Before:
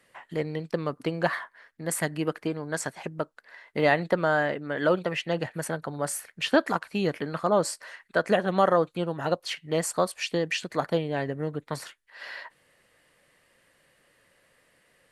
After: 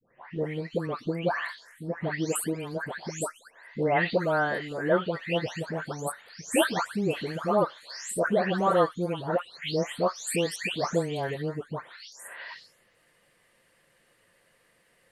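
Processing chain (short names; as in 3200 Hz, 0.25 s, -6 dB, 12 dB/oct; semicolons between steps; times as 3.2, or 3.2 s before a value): spectral delay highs late, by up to 0.439 s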